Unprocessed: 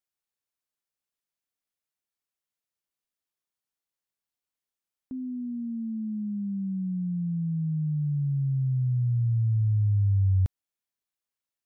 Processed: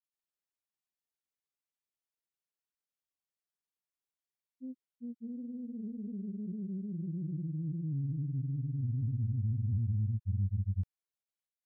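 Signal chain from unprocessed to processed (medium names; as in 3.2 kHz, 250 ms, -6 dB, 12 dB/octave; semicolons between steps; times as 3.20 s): granulator 100 ms, grains 20 per s, spray 534 ms, pitch spread up and down by 0 st; loudspeaker Doppler distortion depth 0.73 ms; trim -6.5 dB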